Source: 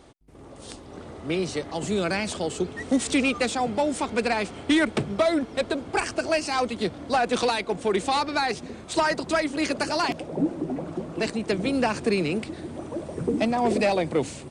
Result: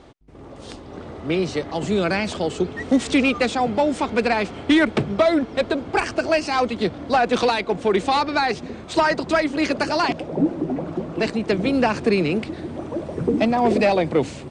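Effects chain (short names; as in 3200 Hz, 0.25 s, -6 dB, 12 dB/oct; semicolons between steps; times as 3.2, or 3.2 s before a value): air absorption 89 m; gain +5 dB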